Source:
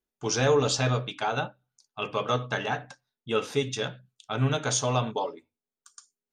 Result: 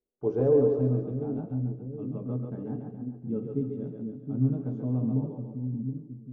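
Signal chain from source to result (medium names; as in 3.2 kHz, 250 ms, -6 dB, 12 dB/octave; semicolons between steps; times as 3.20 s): low-pass sweep 500 Hz -> 250 Hz, 0.25–0.88 s; two-band feedback delay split 320 Hz, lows 721 ms, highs 138 ms, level -3.5 dB; trim -2.5 dB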